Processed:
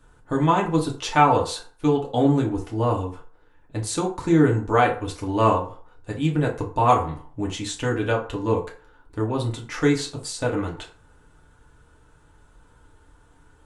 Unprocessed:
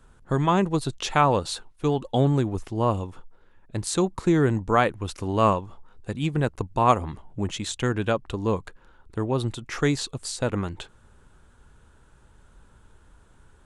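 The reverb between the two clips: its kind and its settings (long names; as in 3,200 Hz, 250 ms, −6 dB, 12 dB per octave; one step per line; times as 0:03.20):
feedback delay network reverb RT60 0.44 s, low-frequency decay 0.7×, high-frequency decay 0.6×, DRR −2 dB
level −2.5 dB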